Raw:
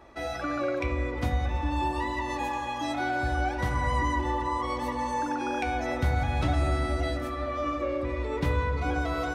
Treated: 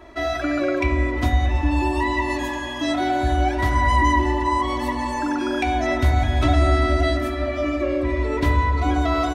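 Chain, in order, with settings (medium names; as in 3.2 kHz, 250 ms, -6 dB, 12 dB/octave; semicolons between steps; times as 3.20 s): band-stop 820 Hz, Q 15; comb 3 ms, depth 81%; trim +5.5 dB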